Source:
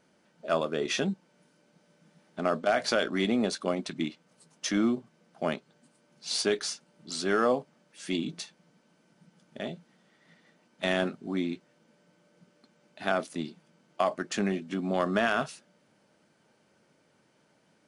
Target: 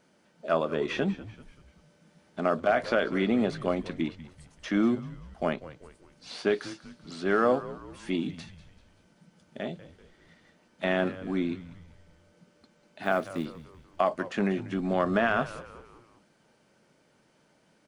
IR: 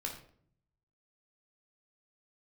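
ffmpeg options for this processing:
-filter_complex "[0:a]asettb=1/sr,asplit=3[s0][s1][s2];[s0]atrim=end=13.034[s3];[s1]atrim=start=13.03:end=13.45,asetpts=PTS-STARTPTS,afade=t=in:d=0.004:c=qsin,afade=t=out:st=0.416:d=0.004:c=qsin,acrusher=bits=4:mode=log:mix=0:aa=0.000001[s4];[s2]atrim=start=13.446[s5];[s3][s4]acrossfade=d=0.004:c1=hsin:c2=qsin[s6];[s6][s5]acrossfade=d=0.004:c1=qsin:c2=hsin,acrossover=split=2900[s7][s8];[s8]acompressor=threshold=0.00224:ratio=4:attack=1:release=60[s9];[s7][s9]amix=inputs=2:normalize=0,asplit=2[s10][s11];[s11]asplit=4[s12][s13][s14][s15];[s12]adelay=193,afreqshift=-87,volume=0.158[s16];[s13]adelay=386,afreqshift=-174,volume=0.0759[s17];[s14]adelay=579,afreqshift=-261,volume=0.0363[s18];[s15]adelay=772,afreqshift=-348,volume=0.0176[s19];[s16][s17][s18][s19]amix=inputs=4:normalize=0[s20];[s10][s20]amix=inputs=2:normalize=0,volume=1.19"

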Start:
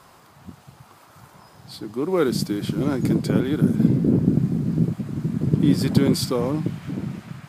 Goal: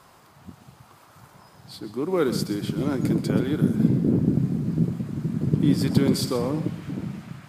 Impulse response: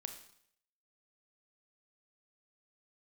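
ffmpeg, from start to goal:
-filter_complex "[0:a]asplit=2[s0][s1];[1:a]atrim=start_sample=2205,adelay=128[s2];[s1][s2]afir=irnorm=-1:irlink=0,volume=0.335[s3];[s0][s3]amix=inputs=2:normalize=0,volume=0.75"

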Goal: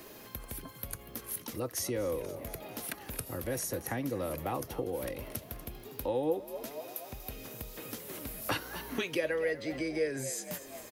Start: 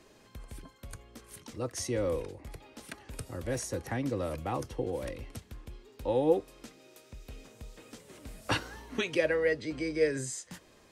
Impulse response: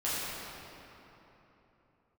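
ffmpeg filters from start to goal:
-filter_complex "[0:a]asplit=2[s0][s1];[s1]asplit=4[s2][s3][s4][s5];[s2]adelay=240,afreqshift=67,volume=0.141[s6];[s3]adelay=480,afreqshift=134,volume=0.0653[s7];[s4]adelay=720,afreqshift=201,volume=0.0299[s8];[s5]adelay=960,afreqshift=268,volume=0.0138[s9];[s6][s7][s8][s9]amix=inputs=4:normalize=0[s10];[s0][s10]amix=inputs=2:normalize=0,aexciter=amount=6.6:drive=7:freq=11000,acompressor=threshold=0.00447:ratio=2,lowshelf=f=87:g=-8,volume=2.66"

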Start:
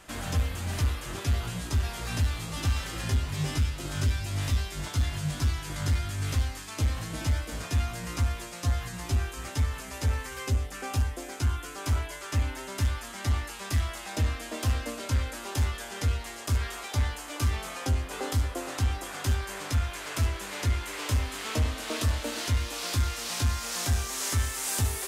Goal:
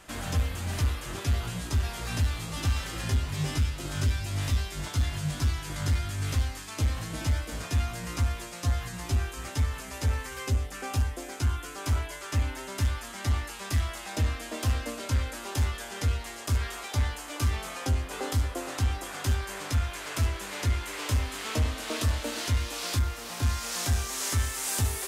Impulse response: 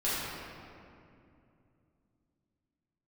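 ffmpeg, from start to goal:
-filter_complex "[0:a]asettb=1/sr,asplit=3[s0][s1][s2];[s0]atrim=end=22.994[s3];[s1]atrim=start=22.99:end=23.43,asetpts=PTS-STARTPTS,afade=t=in:d=0.004:c=qsin,afade=t=out:st=0.436:d=0.004:c=qsin,equalizer=f=5600:w=0.37:g=-7.5[s4];[s2]atrim=start=23.426[s5];[s3][s4]acrossfade=d=0.004:c1=hsin:c2=qsin[s6];[s6][s5]acrossfade=d=0.004:c1=qsin:c2=hsin"

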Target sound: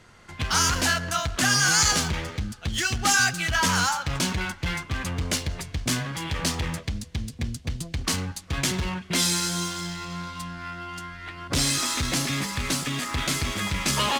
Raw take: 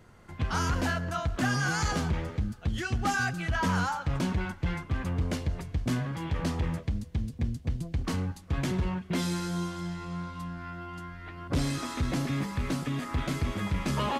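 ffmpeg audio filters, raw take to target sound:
-af "crystalizer=i=9.5:c=0,adynamicsmooth=sensitivity=8:basefreq=4400"

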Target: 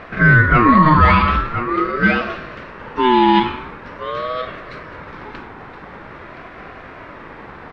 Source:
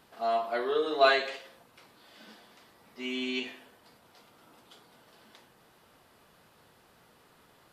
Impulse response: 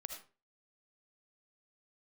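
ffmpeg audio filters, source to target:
-filter_complex "[0:a]lowpass=1400,asplit=2[s0][s1];[s1]acompressor=threshold=0.00708:ratio=6,volume=1[s2];[s0][s2]amix=inputs=2:normalize=0,asoftclip=type=tanh:threshold=0.211,asplit=2[s3][s4];[s4]aecho=0:1:1020:0.251[s5];[s3][s5]amix=inputs=2:normalize=0,alimiter=level_in=15:limit=0.891:release=50:level=0:latency=1,aeval=exprs='val(0)*sin(2*PI*740*n/s+740*0.2/0.45*sin(2*PI*0.45*n/s))':c=same"

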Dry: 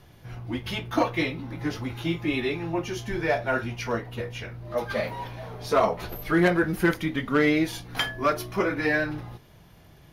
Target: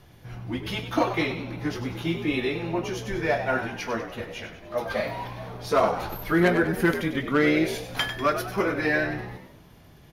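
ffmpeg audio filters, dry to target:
-filter_complex "[0:a]asettb=1/sr,asplit=3[s0][s1][s2];[s0]atrim=end=3.574[s3];[s1]atrim=start=3.57:end=5.07,asetpts=PTS-STARTPTS,afade=t=in:d=0.004:c=qsin,afade=t=out:st=1.496:d=0.004:c=qsin,bandreject=f=60:t=h:w=6,bandreject=f=120:t=h:w=6,bandreject=f=180:t=h:w=6,bandreject=f=240:t=h:w=6,bandreject=f=300:t=h:w=6,bandreject=f=360:t=h:w=6,bandreject=f=420:t=h:w=6,bandreject=f=480:t=h:w=6[s4];[s2]atrim=start=5.066[s5];[s3][s4]acrossfade=d=0.004:c1=hsin:c2=qsin[s6];[s6][s5]acrossfade=d=0.004:c1=qsin:c2=hsin,asplit=6[s7][s8][s9][s10][s11][s12];[s8]adelay=97,afreqshift=68,volume=0.316[s13];[s9]adelay=194,afreqshift=136,volume=0.155[s14];[s10]adelay=291,afreqshift=204,volume=0.0759[s15];[s11]adelay=388,afreqshift=272,volume=0.0372[s16];[s12]adelay=485,afreqshift=340,volume=0.0182[s17];[s7][s13][s14][s15][s16][s17]amix=inputs=6:normalize=0"

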